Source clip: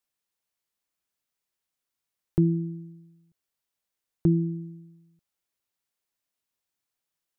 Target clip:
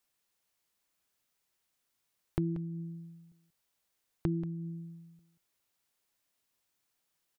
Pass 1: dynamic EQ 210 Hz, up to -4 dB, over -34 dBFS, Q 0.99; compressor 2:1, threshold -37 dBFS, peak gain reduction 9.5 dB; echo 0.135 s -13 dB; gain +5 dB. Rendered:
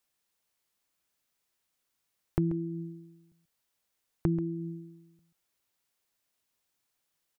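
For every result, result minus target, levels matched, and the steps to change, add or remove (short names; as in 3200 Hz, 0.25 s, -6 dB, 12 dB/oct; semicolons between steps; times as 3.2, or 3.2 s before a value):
echo 49 ms early; compressor: peak gain reduction -4 dB
change: echo 0.184 s -13 dB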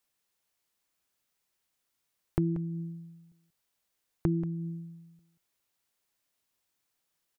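compressor: peak gain reduction -4 dB
change: compressor 2:1, threshold -44.5 dBFS, peak gain reduction 13.5 dB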